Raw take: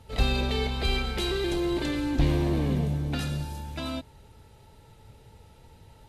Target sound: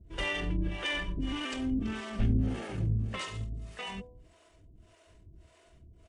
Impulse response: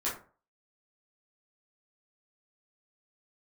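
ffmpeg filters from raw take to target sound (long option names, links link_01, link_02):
-filter_complex "[0:a]acrossover=split=490[link_01][link_02];[link_01]aeval=exprs='val(0)*(1-1/2+1/2*cos(2*PI*1.7*n/s))':channel_layout=same[link_03];[link_02]aeval=exprs='val(0)*(1-1/2-1/2*cos(2*PI*1.7*n/s))':channel_layout=same[link_04];[link_03][link_04]amix=inputs=2:normalize=0,asetrate=33038,aresample=44100,atempo=1.33484,bandreject=frequency=82.61:width_type=h:width=4,bandreject=frequency=165.22:width_type=h:width=4,bandreject=frequency=247.83:width_type=h:width=4,bandreject=frequency=330.44:width_type=h:width=4,bandreject=frequency=413.05:width_type=h:width=4,bandreject=frequency=495.66:width_type=h:width=4,bandreject=frequency=578.27:width_type=h:width=4,bandreject=frequency=660.88:width_type=h:width=4,bandreject=frequency=743.49:width_type=h:width=4,bandreject=frequency=826.1:width_type=h:width=4,bandreject=frequency=908.71:width_type=h:width=4,bandreject=frequency=991.32:width_type=h:width=4"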